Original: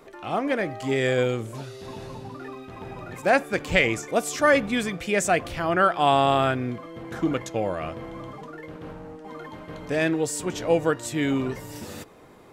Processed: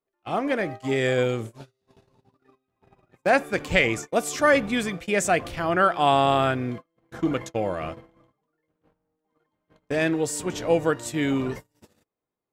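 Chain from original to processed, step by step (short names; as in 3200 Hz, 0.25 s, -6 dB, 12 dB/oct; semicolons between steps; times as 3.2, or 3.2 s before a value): gate -33 dBFS, range -38 dB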